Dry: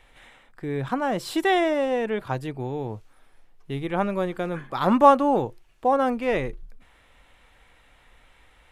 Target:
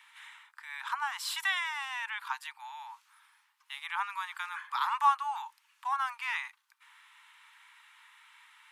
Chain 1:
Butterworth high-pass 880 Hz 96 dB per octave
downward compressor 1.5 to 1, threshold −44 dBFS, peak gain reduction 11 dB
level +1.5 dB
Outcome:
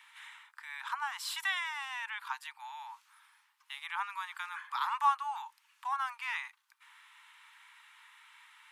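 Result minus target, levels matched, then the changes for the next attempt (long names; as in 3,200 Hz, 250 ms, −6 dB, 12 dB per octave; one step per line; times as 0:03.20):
downward compressor: peak gain reduction +2.5 dB
change: downward compressor 1.5 to 1, threshold −36 dBFS, peak gain reduction 8.5 dB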